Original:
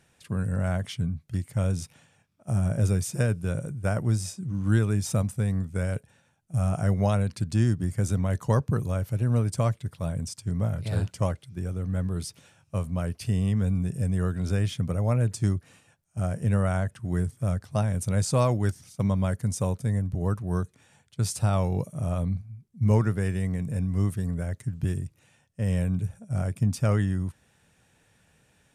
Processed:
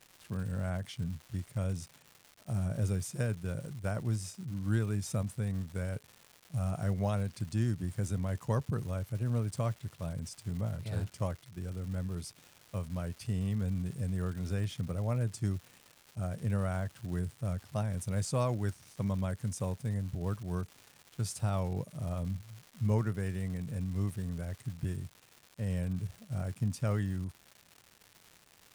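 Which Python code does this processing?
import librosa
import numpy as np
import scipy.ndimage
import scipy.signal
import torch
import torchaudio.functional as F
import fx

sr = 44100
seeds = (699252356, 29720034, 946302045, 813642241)

y = fx.dmg_crackle(x, sr, seeds[0], per_s=330.0, level_db=-35.0)
y = F.gain(torch.from_numpy(y), -8.0).numpy()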